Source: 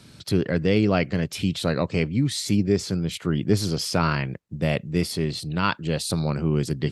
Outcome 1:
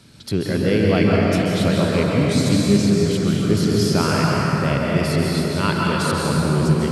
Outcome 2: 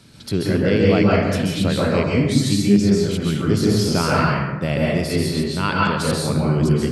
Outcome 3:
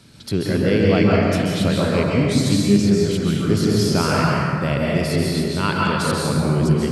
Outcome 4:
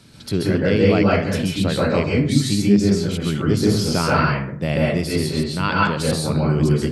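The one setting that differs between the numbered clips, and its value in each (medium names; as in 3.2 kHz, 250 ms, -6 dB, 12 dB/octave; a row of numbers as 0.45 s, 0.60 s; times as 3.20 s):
plate-style reverb, RT60: 4.9 s, 1.1 s, 2.4 s, 0.52 s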